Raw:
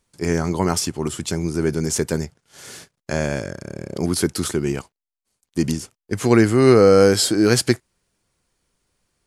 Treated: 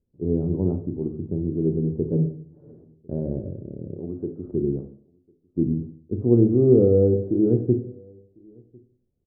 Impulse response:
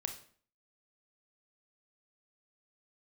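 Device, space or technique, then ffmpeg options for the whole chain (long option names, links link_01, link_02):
next room: -filter_complex "[0:a]asettb=1/sr,asplit=3[link_01][link_02][link_03];[link_01]atrim=end=3.964[link_04];[link_02]atrim=start=3.96:end=4.46,asetpts=PTS-STARTPTS,afade=type=in:duration=0.004:curve=qsin,afade=type=out:start_time=0.496:duration=0.004:curve=qsin,lowshelf=frequency=380:gain=-11.5[link_05];[link_03]atrim=start=4.456[link_06];[link_04][link_05]acrossfade=duration=0.004:curve1=hsin:curve2=qsin[link_07];[link_07][link_06]acrossfade=duration=0.004:curve1=qsin:curve2=hsin,lowpass=frequency=460:width=0.5412,lowpass=frequency=460:width=1.3066[link_08];[1:a]atrim=start_sample=2205[link_09];[link_08][link_09]afir=irnorm=-1:irlink=0,asplit=3[link_10][link_11][link_12];[link_10]afade=type=out:start_time=2.12:duration=0.02[link_13];[link_11]aecho=1:1:6.9:0.97,afade=type=in:start_time=2.12:duration=0.02,afade=type=out:start_time=2.71:duration=0.02[link_14];[link_12]afade=type=in:start_time=2.71:duration=0.02[link_15];[link_13][link_14][link_15]amix=inputs=3:normalize=0,asplit=2[link_16][link_17];[link_17]adelay=1050,volume=-29dB,highshelf=frequency=4000:gain=-23.6[link_18];[link_16][link_18]amix=inputs=2:normalize=0,volume=-1.5dB"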